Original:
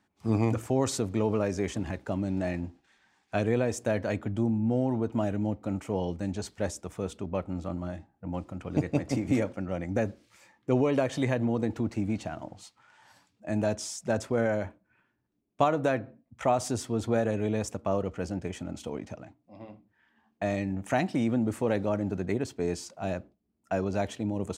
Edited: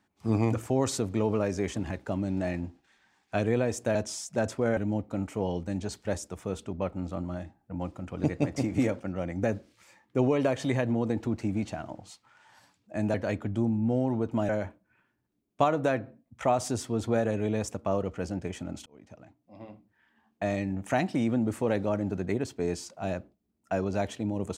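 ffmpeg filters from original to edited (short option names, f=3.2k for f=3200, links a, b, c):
-filter_complex "[0:a]asplit=6[a][b][c][d][e][f];[a]atrim=end=3.952[g];[b]atrim=start=13.668:end=14.492[h];[c]atrim=start=5.298:end=13.672[i];[d]atrim=start=3.948:end=5.302[j];[e]atrim=start=14.488:end=18.86,asetpts=PTS-STARTPTS,afade=t=out:st=4.368:d=0.004:c=hsin[k];[f]atrim=start=18.86,asetpts=PTS-STARTPTS,afade=t=in:d=0.75[l];[g][h]acrossfade=d=0.004:c1=hsin:c2=hsin[m];[m][i]acrossfade=d=0.004:c1=hsin:c2=hsin[n];[n][j]acrossfade=d=0.004:c1=hsin:c2=hsin[o];[k][l]concat=n=2:v=0:a=1[p];[o][p]acrossfade=d=0.004:c1=hsin:c2=hsin"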